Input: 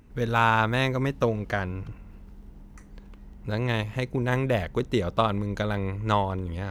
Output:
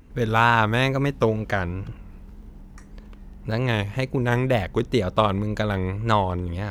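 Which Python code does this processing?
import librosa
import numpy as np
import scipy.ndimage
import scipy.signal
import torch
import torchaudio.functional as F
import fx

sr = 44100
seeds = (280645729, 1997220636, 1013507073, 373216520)

y = fx.wow_flutter(x, sr, seeds[0], rate_hz=2.1, depth_cents=91.0)
y = y * librosa.db_to_amplitude(3.5)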